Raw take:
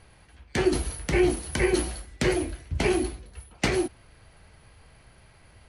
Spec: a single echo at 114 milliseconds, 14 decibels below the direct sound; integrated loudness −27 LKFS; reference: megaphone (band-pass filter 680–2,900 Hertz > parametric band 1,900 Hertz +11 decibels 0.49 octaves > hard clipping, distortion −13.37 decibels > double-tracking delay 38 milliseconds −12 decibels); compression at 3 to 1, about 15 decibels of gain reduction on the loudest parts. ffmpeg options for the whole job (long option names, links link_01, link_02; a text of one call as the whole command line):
ffmpeg -i in.wav -filter_complex "[0:a]acompressor=threshold=-39dB:ratio=3,highpass=680,lowpass=2900,equalizer=frequency=1900:width_type=o:width=0.49:gain=11,aecho=1:1:114:0.2,asoftclip=type=hard:threshold=-26dB,asplit=2[link_01][link_02];[link_02]adelay=38,volume=-12dB[link_03];[link_01][link_03]amix=inputs=2:normalize=0,volume=14dB" out.wav